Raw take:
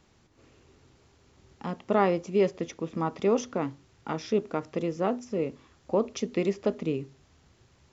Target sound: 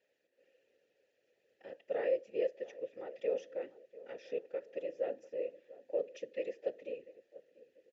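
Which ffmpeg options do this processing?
-filter_complex "[0:a]afftfilt=real='hypot(re,im)*cos(2*PI*random(0))':imag='hypot(re,im)*sin(2*PI*random(1))':win_size=512:overlap=0.75,asplit=3[a][b][c];[a]bandpass=f=530:t=q:w=8,volume=0dB[d];[b]bandpass=f=1.84k:t=q:w=8,volume=-6dB[e];[c]bandpass=f=2.48k:t=q:w=8,volume=-9dB[f];[d][e][f]amix=inputs=3:normalize=0,bass=f=250:g=-8,treble=f=4k:g=6,asplit=2[g][h];[h]adelay=693,lowpass=f=1.3k:p=1,volume=-18dB,asplit=2[i][j];[j]adelay=693,lowpass=f=1.3k:p=1,volume=0.42,asplit=2[k][l];[l]adelay=693,lowpass=f=1.3k:p=1,volume=0.42[m];[i][k][m]amix=inputs=3:normalize=0[n];[g][n]amix=inputs=2:normalize=0,volume=4.5dB"

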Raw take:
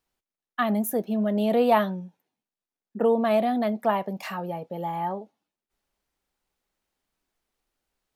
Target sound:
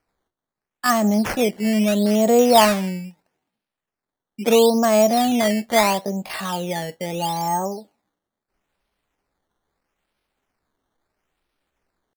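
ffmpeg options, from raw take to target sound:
-af "atempo=0.67,acrusher=samples=12:mix=1:aa=0.000001:lfo=1:lforange=12:lforate=0.76,volume=6dB"

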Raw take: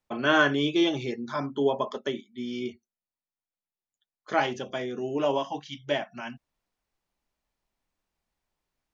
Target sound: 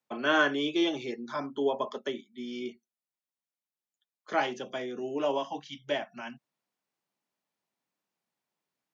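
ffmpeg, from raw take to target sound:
-filter_complex "[0:a]highpass=f=140:w=0.5412,highpass=f=140:w=1.3066,acrossover=split=210|790|1300[a][b][c][d];[a]acompressor=threshold=-48dB:ratio=6[e];[e][b][c][d]amix=inputs=4:normalize=0,volume=-3dB"

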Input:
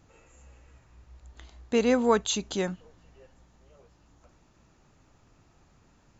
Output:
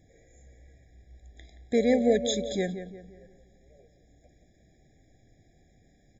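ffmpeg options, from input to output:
-filter_complex "[0:a]asplit=2[a][b];[b]adelay=175,lowpass=f=2.2k:p=1,volume=-10dB,asplit=2[c][d];[d]adelay=175,lowpass=f=2.2k:p=1,volume=0.44,asplit=2[e][f];[f]adelay=175,lowpass=f=2.2k:p=1,volume=0.44,asplit=2[g][h];[h]adelay=175,lowpass=f=2.2k:p=1,volume=0.44,asplit=2[i][j];[j]adelay=175,lowpass=f=2.2k:p=1,volume=0.44[k];[a][c][e][g][i][k]amix=inputs=6:normalize=0,asettb=1/sr,asplit=3[l][m][n];[l]atrim=end=1.774[o];[m]atrim=start=1.77:end=2.55,asetpts=PTS-STARTPTS,afade=t=in:d=0.004:c=qsin,afade=t=out:st=0.776:d=0.004:c=qsin,aeval=exprs='val(0)+0.0224*sin(2*PI*570*n/s)':c=same[p];[n]atrim=start=2.546[q];[o][p]acrossfade=d=0.004:c1=hsin:c2=qsin[r];[r][q]acrossfade=d=0.004:c1=qsin:c2=hsin,afftfilt=real='re*eq(mod(floor(b*sr/1024/810),2),0)':imag='im*eq(mod(floor(b*sr/1024/810),2),0)':win_size=1024:overlap=0.75"

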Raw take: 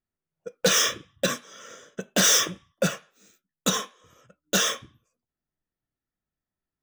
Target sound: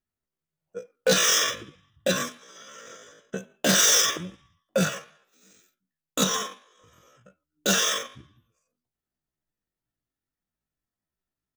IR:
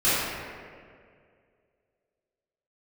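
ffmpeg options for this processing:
-af "atempo=0.59"

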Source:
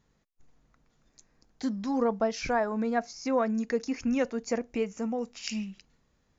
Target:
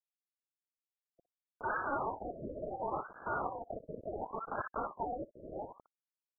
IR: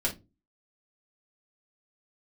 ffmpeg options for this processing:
-filter_complex "[0:a]aeval=exprs='if(lt(val(0),0),0.447*val(0),val(0))':c=same,asettb=1/sr,asplit=3[a][b][c];[a]atrim=end=2.414[d];[b]atrim=start=2.41:end=4.7,asetpts=PTS-STARTPTS,afade=t=in:d=0.004:c=qsin,afade=t=out:st=2.286:d=0.004:c=qsin,highpass=320[e];[c]atrim=start=4.696[f];[d][e]acrossfade=d=0.004:c1=hsin:c2=qsin[g];[g][f]acrossfade=d=0.004:c1=qsin:c2=hsin,aeval=exprs='(mod(50.1*val(0)+1,2)-1)/50.1':c=same,acrusher=bits=6:mix=0:aa=0.000001,acrossover=split=1100[h][i];[h]adelay=60[j];[j][i]amix=inputs=2:normalize=0,lowpass=f=2.1k:t=q:w=0.5098,lowpass=f=2.1k:t=q:w=0.6013,lowpass=f=2.1k:t=q:w=0.9,lowpass=f=2.1k:t=q:w=2.563,afreqshift=-2500,afftfilt=real='re*lt(b*sr/1024,640*pow(1700/640,0.5+0.5*sin(2*PI*0.7*pts/sr)))':imag='im*lt(b*sr/1024,640*pow(1700/640,0.5+0.5*sin(2*PI*0.7*pts/sr)))':win_size=1024:overlap=0.75,volume=11.5dB"

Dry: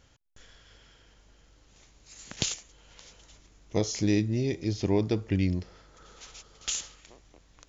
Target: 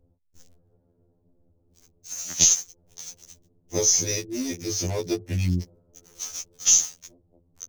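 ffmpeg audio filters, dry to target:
-filter_complex "[0:a]lowpass=f=6.2k:t=q:w=13,aeval=exprs='1.12*(cos(1*acos(clip(val(0)/1.12,-1,1)))-cos(1*PI/2))+0.0126*(cos(6*acos(clip(val(0)/1.12,-1,1)))-cos(6*PI/2))':c=same,acrossover=split=590[a][b];[b]acrusher=bits=5:mix=0:aa=0.5[c];[a][c]amix=inputs=2:normalize=0,afftfilt=real='re*2*eq(mod(b,4),0)':imag='im*2*eq(mod(b,4),0)':win_size=2048:overlap=0.75,volume=3dB"

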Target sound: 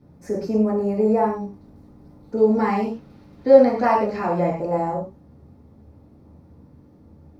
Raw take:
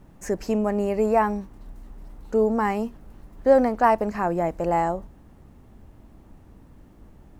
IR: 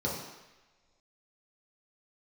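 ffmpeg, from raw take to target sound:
-filter_complex "[0:a]asettb=1/sr,asplit=3[a][b][c];[a]atrim=end=2.374[d];[b]atrim=start=2.37:end=4.56,asetpts=PTS-STARTPTS,afade=t=in:d=0.004:c=qsin,afade=t=out:st=2.186:d=0.004:c=qsin,equalizer=f=3.1k:w=0.6:g=12.5[e];[c]atrim=start=4.556[f];[d][e]acrossfade=d=0.004:c1=hsin:c2=qsin[g];[g][f]acrossfade=d=0.004:c1=qsin:c2=hsin[h];[1:a]atrim=start_sample=2205,afade=t=out:st=0.18:d=0.01,atrim=end_sample=8379[i];[h][i]afir=irnorm=-1:irlink=0,volume=-10dB"

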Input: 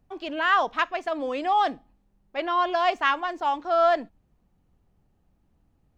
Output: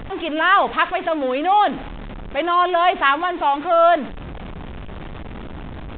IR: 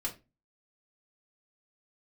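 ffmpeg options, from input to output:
-af "aeval=exprs='val(0)+0.5*0.0266*sgn(val(0))':c=same,bandreject=f=93.76:t=h:w=4,bandreject=f=187.52:t=h:w=4,bandreject=f=281.28:t=h:w=4,bandreject=f=375.04:t=h:w=4,bandreject=f=468.8:t=h:w=4,volume=5.5dB" -ar 8000 -c:a pcm_mulaw

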